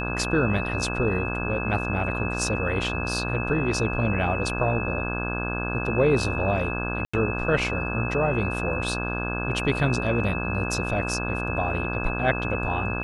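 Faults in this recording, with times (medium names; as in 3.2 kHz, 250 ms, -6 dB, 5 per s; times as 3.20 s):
buzz 60 Hz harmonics 28 -30 dBFS
whine 2.6 kHz -31 dBFS
7.05–7.13 s: dropout 85 ms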